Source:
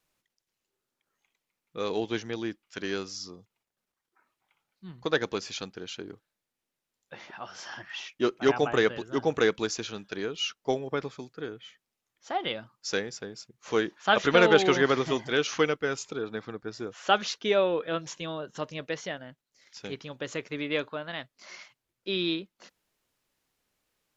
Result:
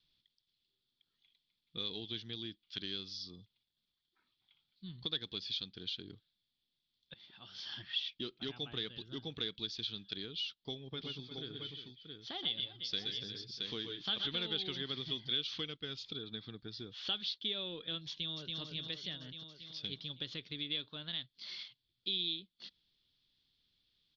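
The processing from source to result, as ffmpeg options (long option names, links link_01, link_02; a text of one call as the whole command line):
ffmpeg -i in.wav -filter_complex "[0:a]asplit=3[link_01][link_02][link_03];[link_01]afade=type=out:start_time=10.93:duration=0.02[link_04];[link_02]aecho=1:1:120|127|353|672:0.376|0.422|0.15|0.316,afade=type=in:start_time=10.93:duration=0.02,afade=type=out:start_time=14.27:duration=0.02[link_05];[link_03]afade=type=in:start_time=14.27:duration=0.02[link_06];[link_04][link_05][link_06]amix=inputs=3:normalize=0,asplit=2[link_07][link_08];[link_08]afade=type=in:start_time=18.08:duration=0.01,afade=type=out:start_time=18.59:duration=0.01,aecho=0:1:280|560|840|1120|1400|1680|1960|2240|2520|2800:0.595662|0.38718|0.251667|0.163584|0.106329|0.0691141|0.0449242|0.0292007|0.0189805|0.0123373[link_09];[link_07][link_09]amix=inputs=2:normalize=0,asplit=2[link_10][link_11];[link_10]atrim=end=7.14,asetpts=PTS-STARTPTS,afade=type=out:start_time=7.136:duration=0.004:curve=hsin:silence=0.0944061[link_12];[link_11]atrim=start=7.14,asetpts=PTS-STARTPTS,afade=type=in:duration=0.75:silence=0.0944061[link_13];[link_12][link_13]concat=n=2:v=0:a=1,firequalizer=gain_entry='entry(100,0);entry(590,-18);entry(4400,5);entry(7300,-29)':delay=0.05:min_phase=1,acompressor=threshold=-46dB:ratio=3,equalizer=frequency=3400:width=5.5:gain=14,volume=1.5dB" out.wav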